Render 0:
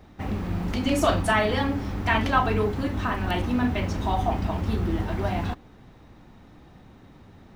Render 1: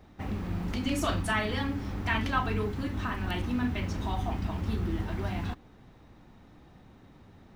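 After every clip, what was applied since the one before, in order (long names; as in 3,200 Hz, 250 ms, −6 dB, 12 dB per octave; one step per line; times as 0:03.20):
dynamic equaliser 630 Hz, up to −7 dB, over −37 dBFS, Q 1.1
level −4.5 dB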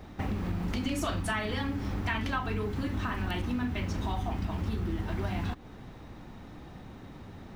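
downward compressor 4 to 1, threshold −38 dBFS, peak gain reduction 13.5 dB
level +8 dB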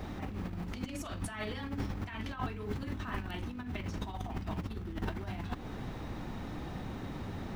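compressor whose output falls as the input rises −36 dBFS, ratio −0.5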